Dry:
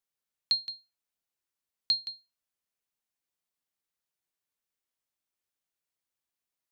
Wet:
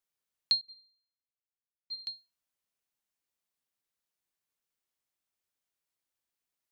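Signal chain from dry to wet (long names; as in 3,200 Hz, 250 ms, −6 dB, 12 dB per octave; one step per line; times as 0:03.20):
0:00.61–0:02.05: resonances in every octave C, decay 0.56 s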